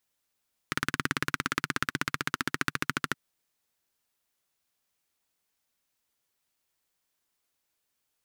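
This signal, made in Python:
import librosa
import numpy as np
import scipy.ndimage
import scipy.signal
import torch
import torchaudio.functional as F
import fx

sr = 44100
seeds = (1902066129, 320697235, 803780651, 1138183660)

y = fx.engine_single_rev(sr, seeds[0], length_s=2.42, rpm=2200, resonances_hz=(150.0, 260.0, 1400.0), end_rpm=1600)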